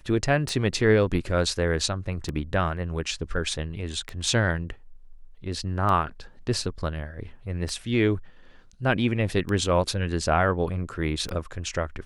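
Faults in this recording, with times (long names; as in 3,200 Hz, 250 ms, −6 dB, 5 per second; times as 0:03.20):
scratch tick 33 1/3 rpm −17 dBFS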